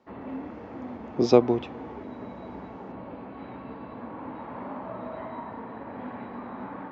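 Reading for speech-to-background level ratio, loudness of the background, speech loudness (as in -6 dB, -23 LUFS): 16.0 dB, -39.0 LUFS, -23.0 LUFS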